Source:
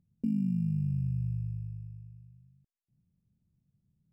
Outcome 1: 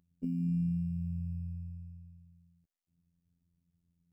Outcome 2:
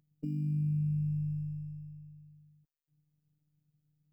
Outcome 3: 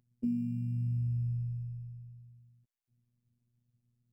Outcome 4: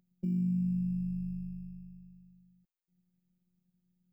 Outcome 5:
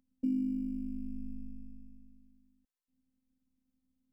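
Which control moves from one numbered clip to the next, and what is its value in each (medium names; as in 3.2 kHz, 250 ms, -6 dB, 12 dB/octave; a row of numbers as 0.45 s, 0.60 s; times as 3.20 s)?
robot voice, frequency: 86 Hz, 150 Hz, 120 Hz, 180 Hz, 260 Hz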